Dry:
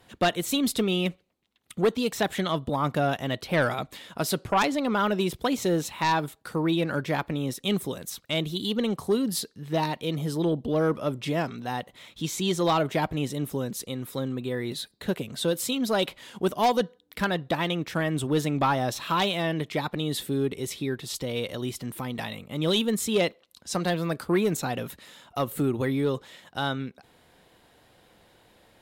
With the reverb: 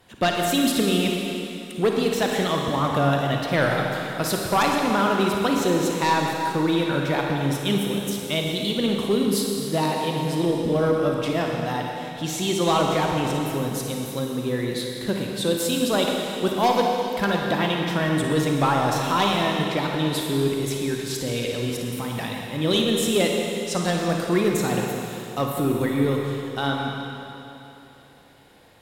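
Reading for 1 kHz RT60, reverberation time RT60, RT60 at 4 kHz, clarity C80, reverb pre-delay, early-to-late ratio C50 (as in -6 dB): 3.0 s, 3.0 s, 2.9 s, 1.5 dB, 36 ms, 0.0 dB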